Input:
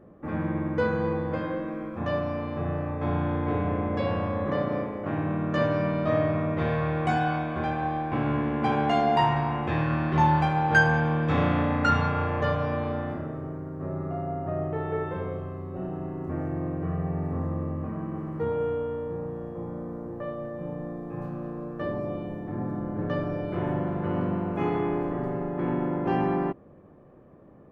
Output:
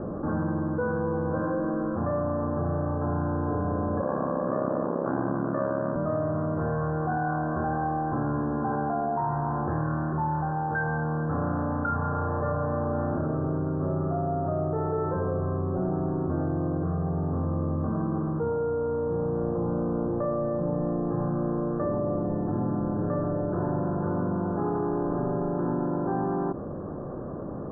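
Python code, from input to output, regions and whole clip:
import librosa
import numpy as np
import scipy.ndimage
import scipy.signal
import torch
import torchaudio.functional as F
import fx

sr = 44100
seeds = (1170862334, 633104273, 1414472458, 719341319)

y = fx.chain(x, sr, fx.highpass(hz=170.0, slope=24),
    fx.ring_mod(carrier_hz=34.0), at=(4.01, 5.96))
y = fx.rider(y, sr, range_db=10, speed_s=0.5)
y = scipy.signal.sosfilt(scipy.signal.butter(16, 1600.0, 'lowpass', fs=sr, output='sos'), y)
y = fx.env_flatten(y, sr, amount_pct=70)
y = y * librosa.db_to_amplitude(-3.0)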